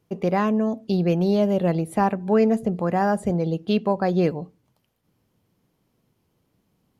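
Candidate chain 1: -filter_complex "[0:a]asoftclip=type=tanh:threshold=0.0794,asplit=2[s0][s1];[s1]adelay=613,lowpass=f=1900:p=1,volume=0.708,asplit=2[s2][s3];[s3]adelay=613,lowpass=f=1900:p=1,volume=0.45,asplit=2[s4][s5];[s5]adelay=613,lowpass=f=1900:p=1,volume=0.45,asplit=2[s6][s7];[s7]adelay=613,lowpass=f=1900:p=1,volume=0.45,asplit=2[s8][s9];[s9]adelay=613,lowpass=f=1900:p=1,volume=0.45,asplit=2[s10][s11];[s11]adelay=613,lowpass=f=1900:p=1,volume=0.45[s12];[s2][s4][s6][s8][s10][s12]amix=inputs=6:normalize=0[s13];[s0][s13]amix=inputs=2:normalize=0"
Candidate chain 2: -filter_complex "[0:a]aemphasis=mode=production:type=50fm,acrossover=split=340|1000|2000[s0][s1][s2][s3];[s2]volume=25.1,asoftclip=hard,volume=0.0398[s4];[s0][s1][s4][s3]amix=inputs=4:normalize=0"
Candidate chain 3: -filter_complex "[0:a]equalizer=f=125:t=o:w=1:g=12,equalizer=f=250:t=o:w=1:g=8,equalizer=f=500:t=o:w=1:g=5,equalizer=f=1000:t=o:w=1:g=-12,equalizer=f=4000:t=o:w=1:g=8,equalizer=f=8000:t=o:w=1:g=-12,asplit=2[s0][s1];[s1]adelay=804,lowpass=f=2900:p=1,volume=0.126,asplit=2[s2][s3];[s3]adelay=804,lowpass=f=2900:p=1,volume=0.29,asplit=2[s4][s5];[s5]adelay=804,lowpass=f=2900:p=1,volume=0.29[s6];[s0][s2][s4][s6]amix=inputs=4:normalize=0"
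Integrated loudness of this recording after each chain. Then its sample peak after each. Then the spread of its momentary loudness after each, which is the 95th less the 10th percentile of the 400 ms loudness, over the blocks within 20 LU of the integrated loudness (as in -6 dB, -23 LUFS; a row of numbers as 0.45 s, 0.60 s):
-26.0 LUFS, -22.5 LUFS, -14.5 LUFS; -15.5 dBFS, -8.5 dBFS, -1.5 dBFS; 14 LU, 4 LU, 18 LU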